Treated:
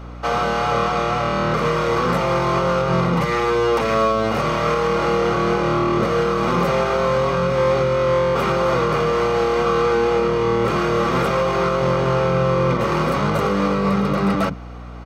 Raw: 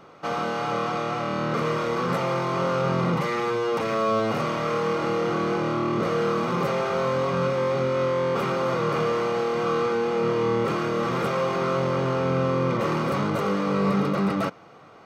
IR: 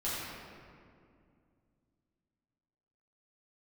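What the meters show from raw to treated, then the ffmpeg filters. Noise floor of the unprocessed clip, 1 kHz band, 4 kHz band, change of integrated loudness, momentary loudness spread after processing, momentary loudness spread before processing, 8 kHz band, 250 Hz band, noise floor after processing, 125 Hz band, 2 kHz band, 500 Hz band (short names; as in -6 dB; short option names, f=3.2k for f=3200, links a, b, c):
-48 dBFS, +6.5 dB, +6.5 dB, +6.0 dB, 2 LU, 3 LU, +6.5 dB, +4.5 dB, -28 dBFS, +6.0 dB, +6.5 dB, +5.5 dB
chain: -filter_complex "[0:a]acrossover=split=270[a][b];[a]adelay=40[c];[c][b]amix=inputs=2:normalize=0,alimiter=limit=-17dB:level=0:latency=1:release=123,aeval=exprs='val(0)+0.00891*(sin(2*PI*60*n/s)+sin(2*PI*2*60*n/s)/2+sin(2*PI*3*60*n/s)/3+sin(2*PI*4*60*n/s)/4+sin(2*PI*5*60*n/s)/5)':c=same,volume=7.5dB"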